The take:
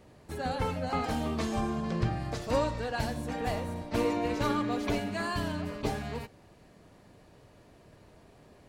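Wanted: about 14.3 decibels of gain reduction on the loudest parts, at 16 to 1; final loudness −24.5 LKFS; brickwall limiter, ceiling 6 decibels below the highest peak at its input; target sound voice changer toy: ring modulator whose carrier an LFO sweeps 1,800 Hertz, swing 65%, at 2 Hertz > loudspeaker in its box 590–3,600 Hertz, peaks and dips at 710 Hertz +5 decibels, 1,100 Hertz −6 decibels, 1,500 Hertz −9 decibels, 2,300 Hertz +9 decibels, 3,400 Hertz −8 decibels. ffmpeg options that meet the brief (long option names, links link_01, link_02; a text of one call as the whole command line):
ffmpeg -i in.wav -af "acompressor=threshold=-37dB:ratio=16,alimiter=level_in=9dB:limit=-24dB:level=0:latency=1,volume=-9dB,aeval=exprs='val(0)*sin(2*PI*1800*n/s+1800*0.65/2*sin(2*PI*2*n/s))':channel_layout=same,highpass=590,equalizer=frequency=710:width_type=q:width=4:gain=5,equalizer=frequency=1100:width_type=q:width=4:gain=-6,equalizer=frequency=1500:width_type=q:width=4:gain=-9,equalizer=frequency=2300:width_type=q:width=4:gain=9,equalizer=frequency=3400:width_type=q:width=4:gain=-8,lowpass=frequency=3600:width=0.5412,lowpass=frequency=3600:width=1.3066,volume=18.5dB" out.wav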